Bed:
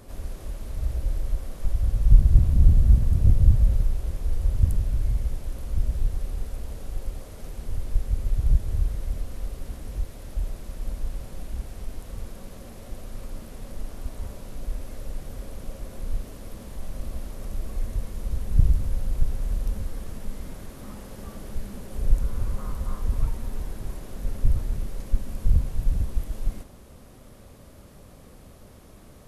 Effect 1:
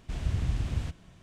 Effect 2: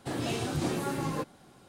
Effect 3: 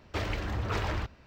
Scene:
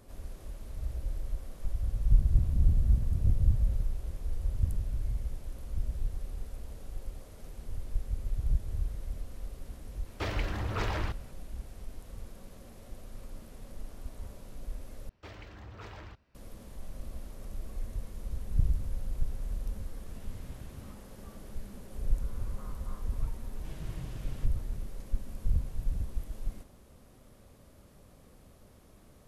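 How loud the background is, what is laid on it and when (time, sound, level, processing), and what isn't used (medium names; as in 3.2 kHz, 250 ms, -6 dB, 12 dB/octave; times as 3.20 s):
bed -8.5 dB
10.06 s: add 3 -1.5 dB
15.09 s: replace with 3 -15 dB
20.01 s: add 1 -17 dB
23.55 s: add 1 -11 dB + comb 6.4 ms
not used: 2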